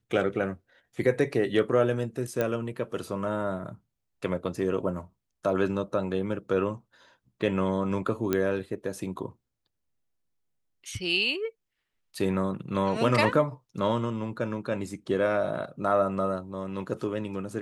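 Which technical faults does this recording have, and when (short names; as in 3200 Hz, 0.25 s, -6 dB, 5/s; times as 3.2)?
2.41 pop -14 dBFS
8.33 pop -12 dBFS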